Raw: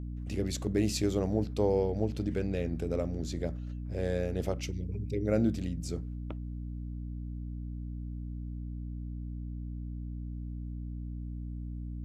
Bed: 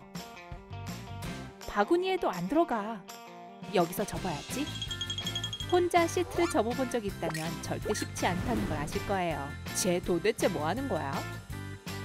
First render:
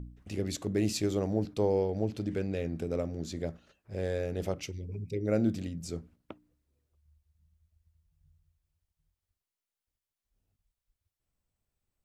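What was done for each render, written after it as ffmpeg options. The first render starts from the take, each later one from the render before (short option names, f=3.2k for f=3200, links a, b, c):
-af "bandreject=f=60:t=h:w=4,bandreject=f=120:t=h:w=4,bandreject=f=180:t=h:w=4,bandreject=f=240:t=h:w=4,bandreject=f=300:t=h:w=4"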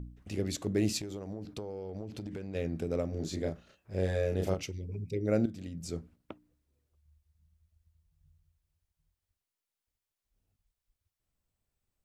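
-filter_complex "[0:a]asplit=3[a][b][c];[a]afade=t=out:st=0.98:d=0.02[d];[b]acompressor=threshold=-35dB:ratio=16:attack=3.2:release=140:knee=1:detection=peak,afade=t=in:st=0.98:d=0.02,afade=t=out:st=2.54:d=0.02[e];[c]afade=t=in:st=2.54:d=0.02[f];[d][e][f]amix=inputs=3:normalize=0,asettb=1/sr,asplit=3[g][h][i];[g]atrim=end=3.094[j];[h]atrim=start=3.09:end=4.63,asetpts=PTS-STARTPTS,afade=t=in:d=0.004:c=qsin,afade=t=out:st=1.536:d=0.004:c=qsin,asplit=2[k][l];[l]adelay=32,volume=-3dB[m];[k][m]amix=inputs=2:normalize=0,atrim=end_sample=67914[n];[i]atrim=start=4.626[o];[j][n]acrossfade=d=0.004:c1=hsin:c2=qsin[p];[p][o]acrossfade=d=0.004:c1=qsin:c2=hsin,asplit=2[q][r];[q]atrim=end=5.46,asetpts=PTS-STARTPTS,afade=t=out:st=5.456:d=0.004:c=hsin:silence=0.211349[s];[r]atrim=start=5.46,asetpts=PTS-STARTPTS,afade=t=in:d=0.43:silence=0.211349[t];[s][t]concat=n=2:v=0:a=1"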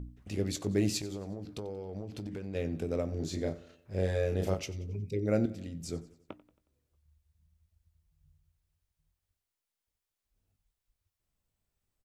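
-filter_complex "[0:a]asplit=2[a][b];[b]adelay=20,volume=-13.5dB[c];[a][c]amix=inputs=2:normalize=0,aecho=1:1:91|182|273|364:0.112|0.0539|0.0259|0.0124"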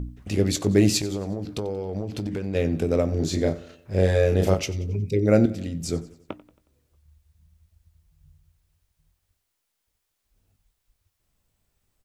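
-af "volume=10.5dB"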